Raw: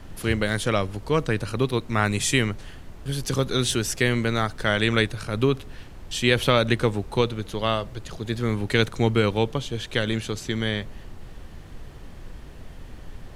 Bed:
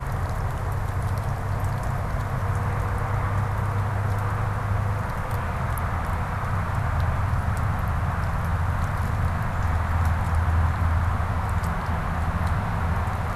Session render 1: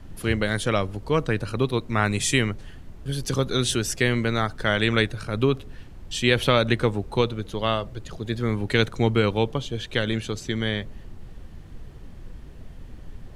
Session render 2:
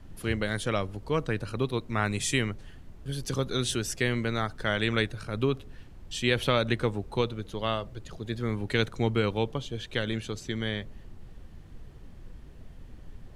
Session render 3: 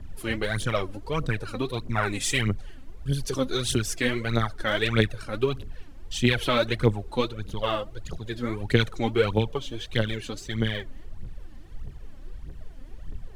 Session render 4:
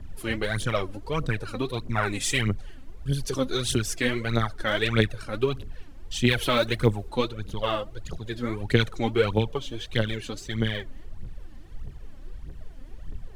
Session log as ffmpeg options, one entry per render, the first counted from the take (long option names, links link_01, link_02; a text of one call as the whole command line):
ffmpeg -i in.wav -af "afftdn=noise_reduction=6:noise_floor=-42" out.wav
ffmpeg -i in.wav -af "volume=-5.5dB" out.wav
ffmpeg -i in.wav -af "aphaser=in_gain=1:out_gain=1:delay=4:decay=0.69:speed=1.6:type=triangular" out.wav
ffmpeg -i in.wav -filter_complex "[0:a]asettb=1/sr,asplit=3[link_01][link_02][link_03];[link_01]atrim=end=6.294[link_04];[link_02]atrim=start=6.29:end=7.09,asetpts=PTS-STARTPTS,afade=type=in:duration=0.004:curve=qsin,afade=type=out:start_time=0.796:duration=0.004:curve=qsin,highshelf=frequency=8500:gain=8.5[link_05];[link_03]atrim=start=7.086[link_06];[link_04][link_05]acrossfade=duration=0.004:curve1=hsin:curve2=qsin[link_07];[link_07][link_06]acrossfade=duration=0.004:curve1=qsin:curve2=hsin" out.wav